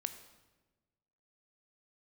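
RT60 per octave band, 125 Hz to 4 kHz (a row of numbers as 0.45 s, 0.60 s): 1.6 s, 1.5 s, 1.4 s, 1.1 s, 1.0 s, 0.90 s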